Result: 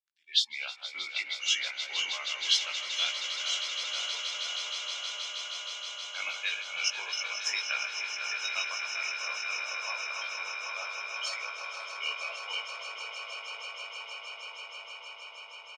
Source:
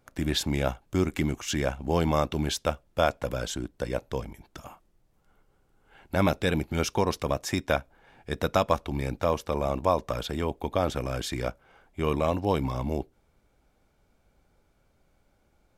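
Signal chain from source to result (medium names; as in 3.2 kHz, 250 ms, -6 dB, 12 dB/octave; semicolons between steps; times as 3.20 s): backward echo that repeats 251 ms, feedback 85%, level -6 dB; spectral noise reduction 25 dB; level rider gain up to 11.5 dB; Butterworth band-pass 3.7 kHz, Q 1.4; doubling 18 ms -4 dB; on a send: echo with a slow build-up 158 ms, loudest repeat 8, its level -12 dB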